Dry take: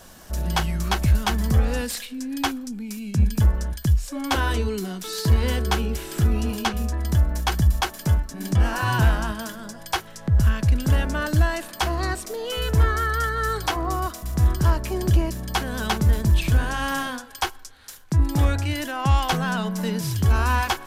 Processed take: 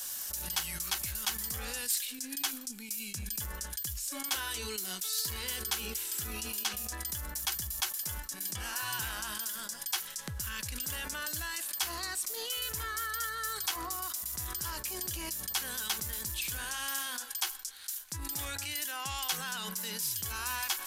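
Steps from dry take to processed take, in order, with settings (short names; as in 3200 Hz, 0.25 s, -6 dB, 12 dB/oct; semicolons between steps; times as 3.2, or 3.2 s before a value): pre-emphasis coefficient 0.97; notch 660 Hz, Q 12; in parallel at +0.5 dB: negative-ratio compressor -49 dBFS, ratio -1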